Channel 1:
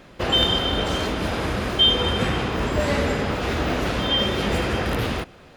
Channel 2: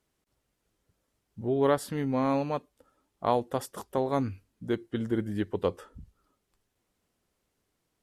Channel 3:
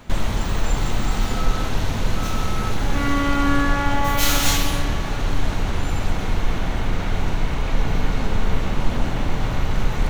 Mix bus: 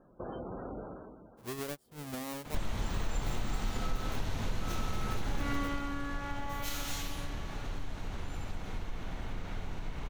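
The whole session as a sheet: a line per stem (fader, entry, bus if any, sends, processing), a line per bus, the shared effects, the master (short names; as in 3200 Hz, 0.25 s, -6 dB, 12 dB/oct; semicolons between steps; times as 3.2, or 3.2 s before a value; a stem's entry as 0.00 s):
-12.0 dB, 0.00 s, bus A, no send, Bessel low-pass 1100 Hz, order 6; spectral gate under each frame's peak -20 dB strong; bell 73 Hz -12 dB 0.77 oct; auto duck -19 dB, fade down 0.65 s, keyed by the second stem
-1.0 dB, 0.00 s, bus A, no send, half-waves squared off; high shelf 8000 Hz +10.5 dB; upward expander 2.5:1, over -31 dBFS
5.61 s -2 dB -> 5.95 s -13.5 dB, 2.45 s, no bus, no send, dry
bus A: 0.0 dB, compressor 16:1, threshold -36 dBFS, peak gain reduction 20.5 dB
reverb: off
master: compressor 2.5:1, threshold -34 dBFS, peak gain reduction 14 dB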